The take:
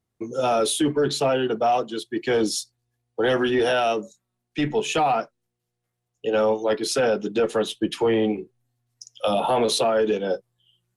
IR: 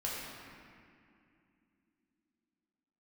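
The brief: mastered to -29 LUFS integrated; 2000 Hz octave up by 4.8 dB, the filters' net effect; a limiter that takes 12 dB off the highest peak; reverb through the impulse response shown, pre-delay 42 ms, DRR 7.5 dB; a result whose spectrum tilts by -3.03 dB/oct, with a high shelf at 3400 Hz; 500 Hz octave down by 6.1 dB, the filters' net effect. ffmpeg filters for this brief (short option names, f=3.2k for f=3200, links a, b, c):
-filter_complex "[0:a]equalizer=f=500:t=o:g=-8,equalizer=f=2k:t=o:g=4.5,highshelf=f=3.4k:g=8.5,alimiter=limit=-18.5dB:level=0:latency=1,asplit=2[a][b];[1:a]atrim=start_sample=2205,adelay=42[c];[b][c]afir=irnorm=-1:irlink=0,volume=-11.5dB[d];[a][d]amix=inputs=2:normalize=0,volume=-1.5dB"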